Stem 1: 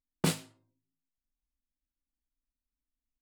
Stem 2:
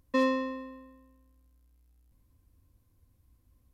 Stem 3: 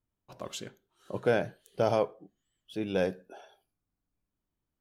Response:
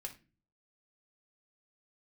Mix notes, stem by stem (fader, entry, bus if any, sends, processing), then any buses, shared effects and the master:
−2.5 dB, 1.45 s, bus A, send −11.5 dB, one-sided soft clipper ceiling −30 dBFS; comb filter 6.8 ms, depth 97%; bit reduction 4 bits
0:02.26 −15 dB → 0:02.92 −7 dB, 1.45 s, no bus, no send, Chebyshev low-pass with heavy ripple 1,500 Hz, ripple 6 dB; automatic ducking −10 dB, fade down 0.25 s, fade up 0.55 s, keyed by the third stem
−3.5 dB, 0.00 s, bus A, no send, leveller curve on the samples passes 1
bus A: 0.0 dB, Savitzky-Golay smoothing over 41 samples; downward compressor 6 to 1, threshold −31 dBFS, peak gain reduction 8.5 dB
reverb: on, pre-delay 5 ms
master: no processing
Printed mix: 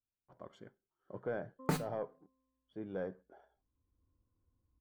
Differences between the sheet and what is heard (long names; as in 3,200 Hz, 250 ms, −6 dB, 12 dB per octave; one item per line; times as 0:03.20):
stem 1: missing one-sided soft clipper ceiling −30 dBFS
stem 3 −3.5 dB → −14.0 dB